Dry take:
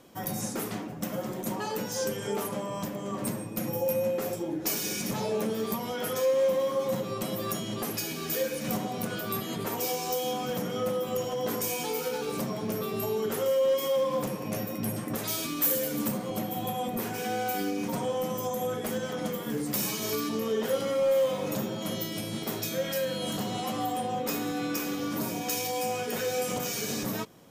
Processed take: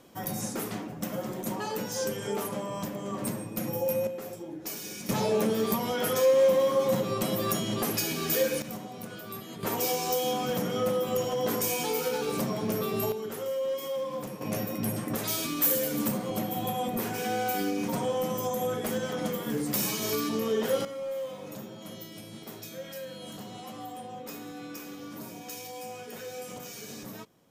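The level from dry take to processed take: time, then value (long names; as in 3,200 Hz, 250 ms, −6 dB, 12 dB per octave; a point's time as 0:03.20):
−0.5 dB
from 0:04.07 −7.5 dB
from 0:05.09 +3.5 dB
from 0:08.62 −8 dB
from 0:09.63 +2 dB
from 0:13.12 −6 dB
from 0:14.41 +1 dB
from 0:20.85 −10 dB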